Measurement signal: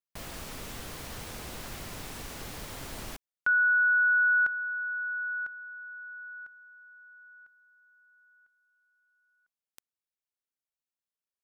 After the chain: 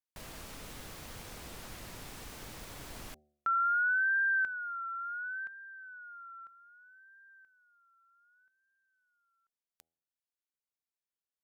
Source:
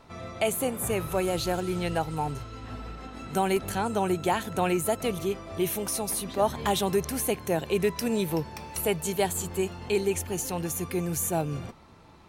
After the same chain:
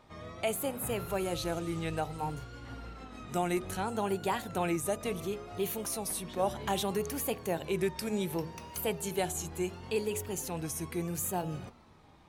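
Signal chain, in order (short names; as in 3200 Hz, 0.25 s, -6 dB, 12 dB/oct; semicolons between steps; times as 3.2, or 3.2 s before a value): de-hum 78.89 Hz, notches 10; wow and flutter 0.64 Hz 130 cents; gain -5.5 dB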